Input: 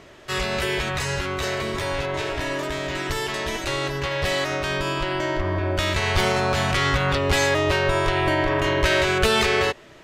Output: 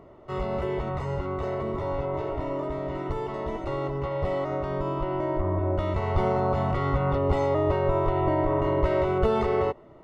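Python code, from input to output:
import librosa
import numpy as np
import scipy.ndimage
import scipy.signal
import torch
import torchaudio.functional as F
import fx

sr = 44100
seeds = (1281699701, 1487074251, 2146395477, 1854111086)

y = scipy.signal.savgol_filter(x, 65, 4, mode='constant')
y = y * 10.0 ** (-1.5 / 20.0)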